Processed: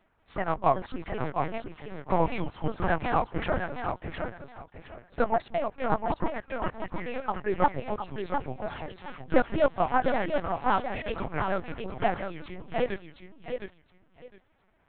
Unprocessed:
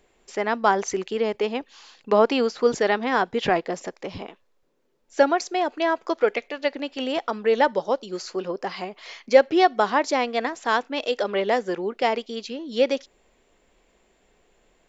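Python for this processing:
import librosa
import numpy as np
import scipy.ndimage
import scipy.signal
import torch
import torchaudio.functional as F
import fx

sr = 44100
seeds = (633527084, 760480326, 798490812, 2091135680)

p1 = fx.pitch_ramps(x, sr, semitones=-8.5, every_ms=191)
p2 = fx.lowpass(p1, sr, hz=1500.0, slope=6)
p3 = fx.low_shelf_res(p2, sr, hz=580.0, db=-6.5, q=1.5)
p4 = p3 + fx.echo_feedback(p3, sr, ms=712, feedback_pct=19, wet_db=-6, dry=0)
y = fx.lpc_vocoder(p4, sr, seeds[0], excitation='pitch_kept', order=8)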